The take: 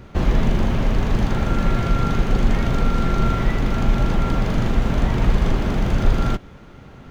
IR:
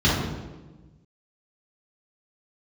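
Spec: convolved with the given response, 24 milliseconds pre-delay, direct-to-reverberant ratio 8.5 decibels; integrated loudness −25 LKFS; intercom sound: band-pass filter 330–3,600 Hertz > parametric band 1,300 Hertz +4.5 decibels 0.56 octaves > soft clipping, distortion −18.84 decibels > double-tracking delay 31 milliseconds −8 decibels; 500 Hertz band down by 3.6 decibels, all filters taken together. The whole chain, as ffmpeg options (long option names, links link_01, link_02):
-filter_complex "[0:a]equalizer=frequency=500:width_type=o:gain=-3.5,asplit=2[link_01][link_02];[1:a]atrim=start_sample=2205,adelay=24[link_03];[link_02][link_03]afir=irnorm=-1:irlink=0,volume=-27dB[link_04];[link_01][link_04]amix=inputs=2:normalize=0,highpass=330,lowpass=3600,equalizer=frequency=1300:width_type=o:width=0.56:gain=4.5,asoftclip=threshold=-19.5dB,asplit=2[link_05][link_06];[link_06]adelay=31,volume=-8dB[link_07];[link_05][link_07]amix=inputs=2:normalize=0,volume=2.5dB"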